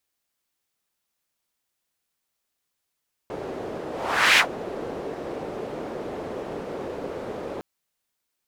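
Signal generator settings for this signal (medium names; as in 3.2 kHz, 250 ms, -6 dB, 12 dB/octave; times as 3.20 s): whoosh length 4.31 s, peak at 1.08 s, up 0.51 s, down 0.10 s, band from 450 Hz, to 2.4 kHz, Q 1.8, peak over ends 17 dB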